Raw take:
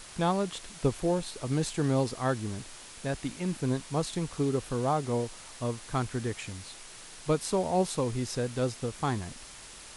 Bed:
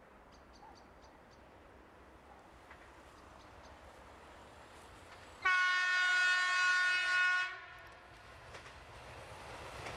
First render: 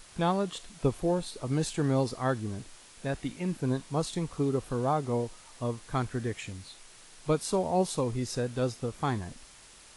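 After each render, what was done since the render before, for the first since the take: noise print and reduce 6 dB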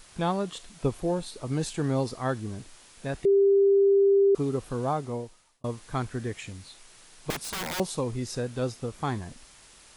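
3.25–4.35 bleep 396 Hz -16.5 dBFS; 4.9–5.64 fade out; 7.3–7.8 wrapped overs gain 27 dB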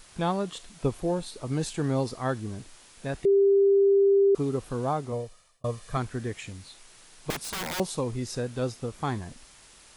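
5.12–5.97 comb 1.7 ms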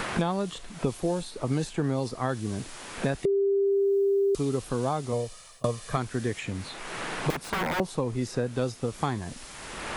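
limiter -18.5 dBFS, peak gain reduction 4 dB; three-band squash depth 100%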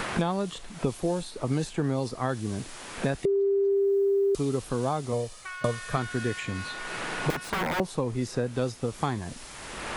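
add bed -8.5 dB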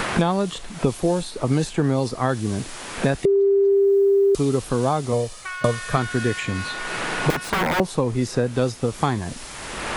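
gain +7 dB

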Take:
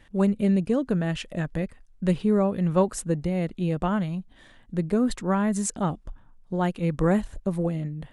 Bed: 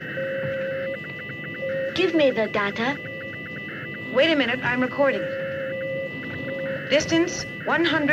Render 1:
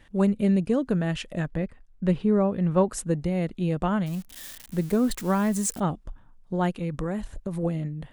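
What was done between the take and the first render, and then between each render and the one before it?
1.48–2.91 LPF 2600 Hz 6 dB/oct; 4.06–5.8 switching spikes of -30.5 dBFS; 6.74–7.63 compressor, threshold -25 dBFS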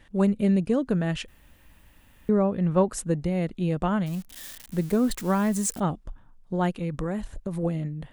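1.28–2.29 room tone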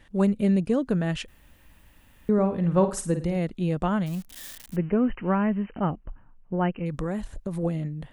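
2.33–3.37 flutter echo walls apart 9 m, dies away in 0.34 s; 4.76–6.86 brick-wall FIR low-pass 3100 Hz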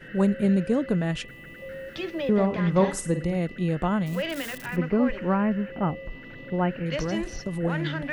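add bed -11.5 dB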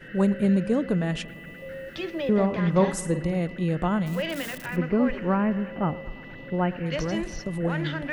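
analogue delay 0.116 s, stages 2048, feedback 74%, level -19.5 dB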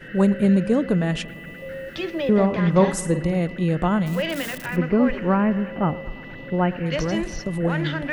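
gain +4 dB

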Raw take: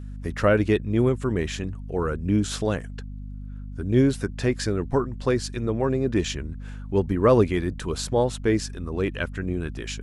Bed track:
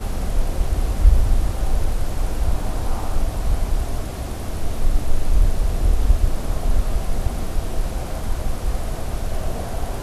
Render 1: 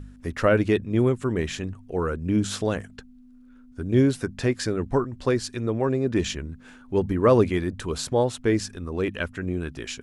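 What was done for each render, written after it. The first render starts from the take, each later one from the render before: de-hum 50 Hz, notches 4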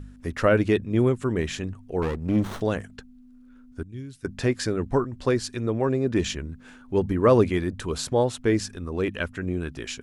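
2.02–2.61 running maximum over 17 samples; 3.83–4.25 passive tone stack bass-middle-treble 6-0-2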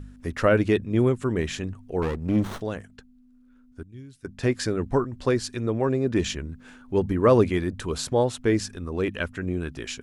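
2.58–4.43 gain -5.5 dB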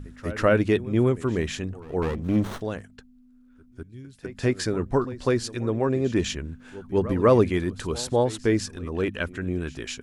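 pre-echo 0.2 s -17.5 dB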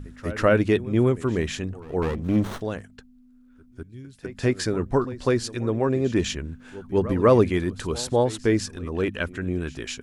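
gain +1 dB

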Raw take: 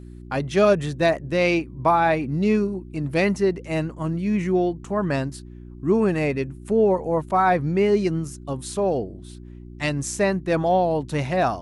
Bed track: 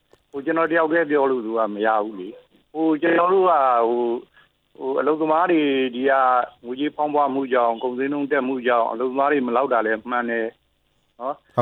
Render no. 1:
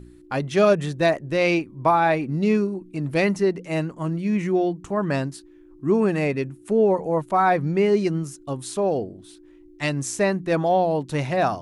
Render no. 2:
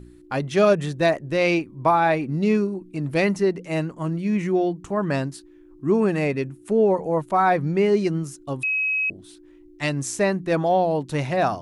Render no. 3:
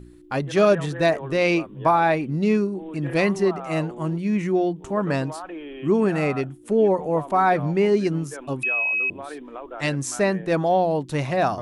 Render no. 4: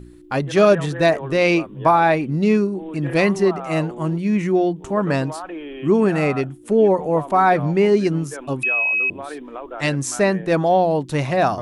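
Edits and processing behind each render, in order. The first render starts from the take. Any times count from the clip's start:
de-hum 60 Hz, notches 4
8.63–9.1 bleep 2550 Hz -20 dBFS
add bed track -17.5 dB
gain +3.5 dB

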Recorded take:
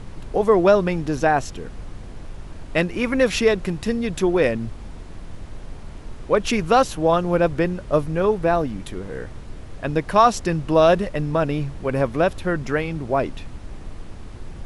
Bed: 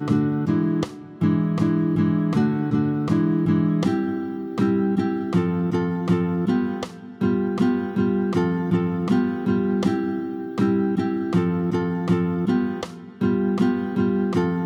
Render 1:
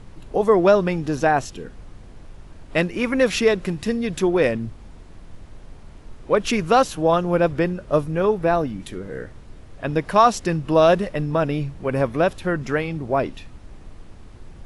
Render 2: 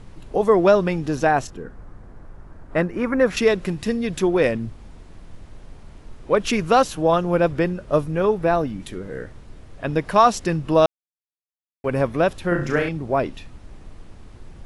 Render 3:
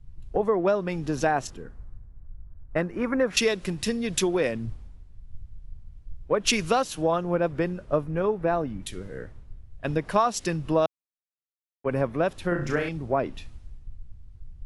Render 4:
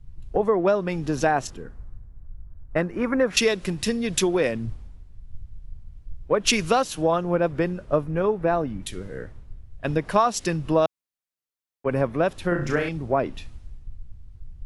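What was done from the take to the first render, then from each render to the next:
noise print and reduce 6 dB
1.47–3.37 resonant high shelf 2100 Hz -10 dB, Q 1.5; 10.86–11.84 mute; 12.48–12.89 flutter echo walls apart 5.9 m, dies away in 0.44 s
compressor 5:1, threshold -22 dBFS, peak gain reduction 11.5 dB; three-band expander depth 100%
gain +2.5 dB

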